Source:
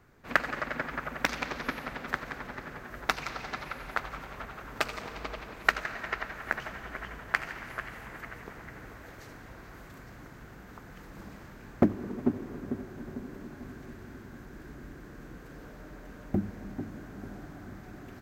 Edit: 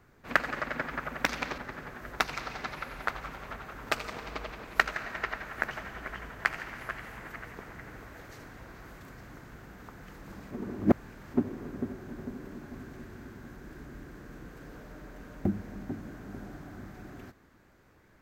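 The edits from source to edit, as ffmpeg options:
ffmpeg -i in.wav -filter_complex "[0:a]asplit=4[link_01][link_02][link_03][link_04];[link_01]atrim=end=1.582[link_05];[link_02]atrim=start=2.468:end=11.402[link_06];[link_03]atrim=start=11.398:end=12.232,asetpts=PTS-STARTPTS,areverse[link_07];[link_04]atrim=start=12.228[link_08];[link_05][link_06]acrossfade=duration=0.004:curve1=hsin:curve2=hsin[link_09];[link_09][link_07]acrossfade=duration=0.004:curve1=hsin:curve2=hsin[link_10];[link_10][link_08]acrossfade=duration=0.004:curve1=hsin:curve2=hsin" out.wav

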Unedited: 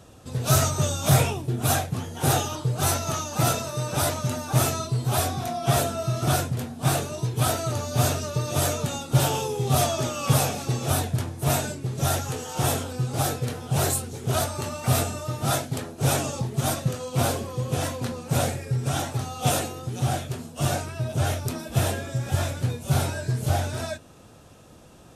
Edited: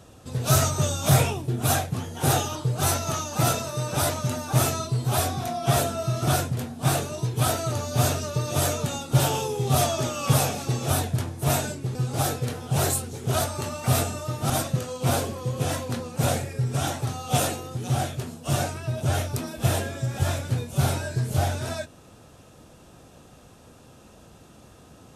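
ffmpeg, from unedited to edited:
ffmpeg -i in.wav -filter_complex "[0:a]asplit=3[link_01][link_02][link_03];[link_01]atrim=end=11.952[link_04];[link_02]atrim=start=12.948:end=15.502[link_05];[link_03]atrim=start=16.618[link_06];[link_04][link_05]acrossfade=duration=0.004:curve1=hsin:curve2=hsin[link_07];[link_07][link_06]acrossfade=duration=0.004:curve1=hsin:curve2=hsin" out.wav

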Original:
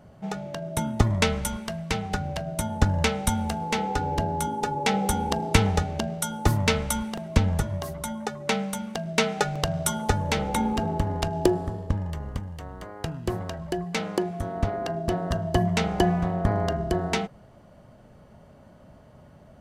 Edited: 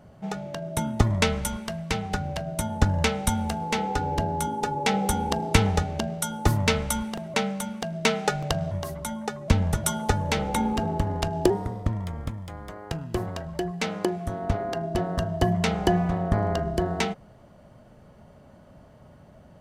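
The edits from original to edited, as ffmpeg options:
ffmpeg -i in.wav -filter_complex "[0:a]asplit=7[link_01][link_02][link_03][link_04][link_05][link_06][link_07];[link_01]atrim=end=7.342[link_08];[link_02]atrim=start=8.468:end=9.842[link_09];[link_03]atrim=start=7.698:end=8.472[link_10];[link_04]atrim=start=7.338:end=7.702[link_11];[link_05]atrim=start=9.838:end=11.504[link_12];[link_06]atrim=start=11.5:end=12.82,asetpts=PTS-STARTPTS,asetrate=48951,aresample=44100,atrim=end_sample=52443,asetpts=PTS-STARTPTS[link_13];[link_07]atrim=start=12.816[link_14];[link_08][link_09]acrossfade=duration=0.004:curve1=hsin:curve2=hsin[link_15];[link_15][link_10]acrossfade=duration=0.004:curve1=hsin:curve2=hsin[link_16];[link_16][link_11]acrossfade=duration=0.004:curve1=hsin:curve2=hsin[link_17];[link_17][link_12]acrossfade=duration=0.004:curve1=hsin:curve2=hsin[link_18];[link_18][link_13]acrossfade=duration=0.004:curve1=hsin:curve2=hsin[link_19];[link_19][link_14]acrossfade=duration=0.004:curve1=hsin:curve2=hsin" out.wav

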